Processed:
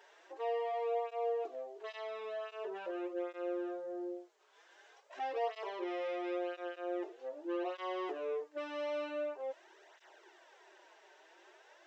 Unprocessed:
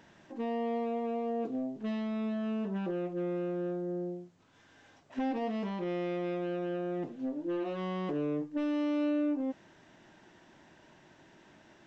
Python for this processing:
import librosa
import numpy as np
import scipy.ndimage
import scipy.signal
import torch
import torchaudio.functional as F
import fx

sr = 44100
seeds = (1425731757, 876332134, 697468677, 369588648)

y = scipy.signal.sosfilt(scipy.signal.ellip(4, 1.0, 40, 380.0, 'highpass', fs=sr, output='sos'), x)
y = fx.flanger_cancel(y, sr, hz=0.45, depth_ms=6.2)
y = F.gain(torch.from_numpy(y), 3.0).numpy()